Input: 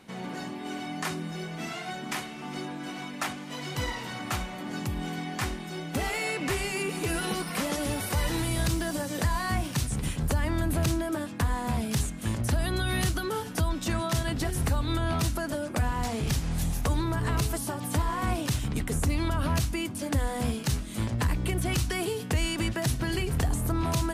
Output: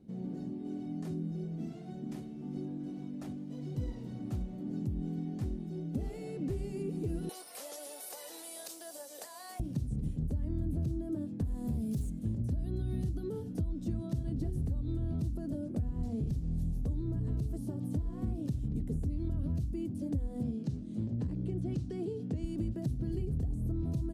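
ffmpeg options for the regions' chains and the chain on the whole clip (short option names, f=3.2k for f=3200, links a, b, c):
-filter_complex "[0:a]asettb=1/sr,asplit=3[a][b][c];[a]atrim=end=7.294[d];[b]atrim=start=7.29:end=9.6,asetpts=PTS-STARTPTS,afade=t=in:d=0.004:c=qsin,afade=t=out:st=2.306:d=0.004:c=qsin,highpass=f=670:w=0.5412,highpass=f=670:w=1.3066,highshelf=f=5.5k:g=11,acontrast=50[e];[c]atrim=start=9.596[f];[d][e]acrossfade=d=0.004:c1=hsin:c2=qsin[g];[g][f]acrossfade=d=0.004:c1=qsin:c2=hsin,asettb=1/sr,asplit=3[h][i][j];[h]atrim=end=11.444[k];[i]atrim=start=11.44:end=12.19,asetpts=PTS-STARTPTS,afade=t=in:d=0.004:c=qsin,afade=t=out:st=0.746:d=0.004:c=qsin,aemphasis=mode=production:type=50kf,volume=24dB,asoftclip=hard,volume=-24dB[l];[j]atrim=start=12.186[m];[k][l]acrossfade=d=0.004:c1=hsin:c2=qsin[n];[n][m]acrossfade=d=0.004:c1=qsin:c2=hsin,asettb=1/sr,asplit=3[o][p][q];[o]atrim=end=20.434[r];[p]atrim=start=20.43:end=22.44,asetpts=PTS-STARTPTS,afade=t=in:d=0.004:c=qsin,afade=t=out:st=2.006:d=0.004:c=qsin,acompressor=mode=upward:threshold=-33dB:ratio=2.5:attack=3.2:release=140:knee=2.83:detection=peak,highpass=120,lowpass=6.8k[s];[q]atrim=start=22.436[t];[r][s]acrossfade=d=0.004:c1=hsin:c2=qsin[u];[u][t]acrossfade=d=0.004:c1=qsin:c2=hsin,firequalizer=gain_entry='entry(240,0);entry(1000,-27);entry(2100,-29);entry(4100,-23)':delay=0.05:min_phase=1,acompressor=threshold=-30dB:ratio=6"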